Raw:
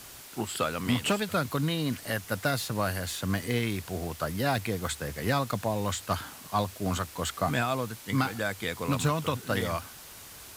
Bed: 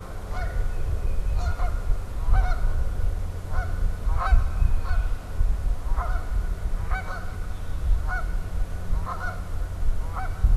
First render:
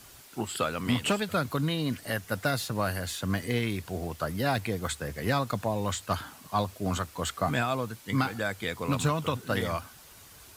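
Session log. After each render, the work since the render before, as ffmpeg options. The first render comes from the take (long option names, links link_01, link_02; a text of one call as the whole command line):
ffmpeg -i in.wav -af "afftdn=noise_reduction=6:noise_floor=-47" out.wav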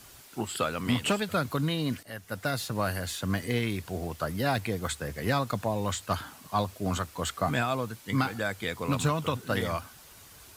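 ffmpeg -i in.wav -filter_complex "[0:a]asplit=2[link_01][link_02];[link_01]atrim=end=2.03,asetpts=PTS-STARTPTS,afade=type=out:start_time=2.026:duration=0.004:curve=hsin:silence=0.188365[link_03];[link_02]atrim=start=2.03,asetpts=PTS-STARTPTS,afade=type=in:duration=0.9:curve=qsin:silence=0.188365[link_04];[link_03][link_04]concat=n=2:v=0:a=1" out.wav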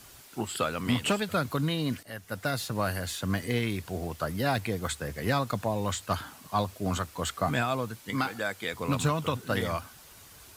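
ffmpeg -i in.wav -filter_complex "[0:a]asettb=1/sr,asplit=3[link_01][link_02][link_03];[link_01]atrim=end=8.104[link_04];[link_02]atrim=start=8.1:end=8.74,asetpts=PTS-STARTPTS,afade=type=in:duration=0.004:curve=qsin,afade=type=out:start_time=0.636:duration=0.004:curve=qsin,highpass=frequency=260:poles=1[link_05];[link_03]atrim=start=8.736[link_06];[link_04][link_05]acrossfade=duration=0.004:curve1=hsin:curve2=qsin[link_07];[link_07][link_06]acrossfade=duration=0.004:curve1=qsin:curve2=hsin" out.wav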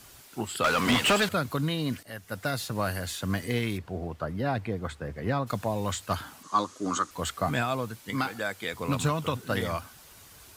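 ffmpeg -i in.wav -filter_complex "[0:a]asettb=1/sr,asplit=3[link_01][link_02][link_03];[link_01]atrim=end=0.644[link_04];[link_02]atrim=start=0.64:end=1.29,asetpts=PTS-STARTPTS,afade=type=in:duration=0.004:curve=qsin,afade=type=out:start_time=0.646:duration=0.004:curve=qsin,asplit=2[link_05][link_06];[link_06]highpass=frequency=720:poles=1,volume=24dB,asoftclip=type=tanh:threshold=-15dB[link_07];[link_05][link_07]amix=inputs=2:normalize=0,lowpass=frequency=4400:poles=1,volume=-6dB[link_08];[link_03]atrim=start=1.286[link_09];[link_04][link_08]acrossfade=duration=0.004:curve1=hsin:curve2=qsin[link_10];[link_10][link_09]acrossfade=duration=0.004:curve1=qsin:curve2=hsin,asplit=3[link_11][link_12][link_13];[link_11]afade=type=out:start_time=3.77:duration=0.02[link_14];[link_12]lowpass=frequency=1300:poles=1,afade=type=in:start_time=3.77:duration=0.02,afade=type=out:start_time=5.46:duration=0.02[link_15];[link_13]afade=type=in:start_time=5.46:duration=0.02[link_16];[link_14][link_15][link_16]amix=inputs=3:normalize=0,asettb=1/sr,asplit=3[link_17][link_18][link_19];[link_17]atrim=end=6.434[link_20];[link_18]atrim=start=6.43:end=7.11,asetpts=PTS-STARTPTS,afade=type=in:duration=0.004:curve=qsin,afade=type=out:start_time=0.676:duration=0.004:curve=qsin,highpass=240,equalizer=frequency=300:width_type=q:width=4:gain=9,equalizer=frequency=670:width_type=q:width=4:gain=-9,equalizer=frequency=1200:width_type=q:width=4:gain=10,equalizer=frequency=2500:width_type=q:width=4:gain=-6,equalizer=frequency=6500:width_type=q:width=4:gain=9,lowpass=frequency=9300:width=0.5412,lowpass=frequency=9300:width=1.3066[link_21];[link_19]atrim=start=7.106[link_22];[link_20][link_21]acrossfade=duration=0.004:curve1=hsin:curve2=qsin[link_23];[link_23][link_22]acrossfade=duration=0.004:curve1=qsin:curve2=hsin" out.wav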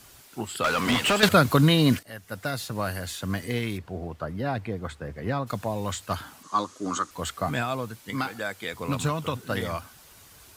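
ffmpeg -i in.wav -filter_complex "[0:a]asplit=3[link_01][link_02][link_03];[link_01]atrim=end=1.232[link_04];[link_02]atrim=start=1.228:end=1.992,asetpts=PTS-STARTPTS,volume=10dB[link_05];[link_03]atrim=start=1.988[link_06];[link_04][link_05]acrossfade=duration=0.004:curve1=hsin:curve2=hsin[link_07];[link_07][link_06]acrossfade=duration=0.004:curve1=hsin:curve2=hsin" out.wav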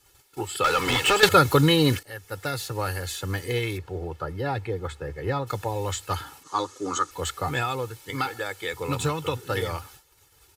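ffmpeg -i in.wav -af "agate=range=-13dB:threshold=-49dB:ratio=16:detection=peak,aecho=1:1:2.3:0.84" out.wav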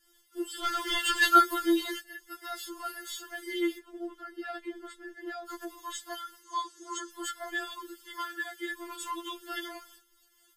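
ffmpeg -i in.wav -af "flanger=delay=5.2:depth=2.7:regen=65:speed=1.4:shape=triangular,afftfilt=real='re*4*eq(mod(b,16),0)':imag='im*4*eq(mod(b,16),0)':win_size=2048:overlap=0.75" out.wav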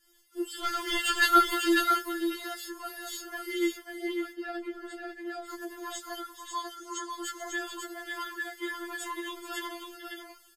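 ffmpeg -i in.wav -filter_complex "[0:a]asplit=2[link_01][link_02];[link_02]adelay=17,volume=-11dB[link_03];[link_01][link_03]amix=inputs=2:normalize=0,aecho=1:1:434|545:0.237|0.562" out.wav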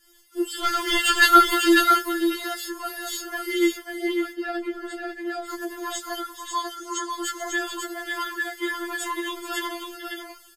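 ffmpeg -i in.wav -af "volume=7.5dB,alimiter=limit=-3dB:level=0:latency=1" out.wav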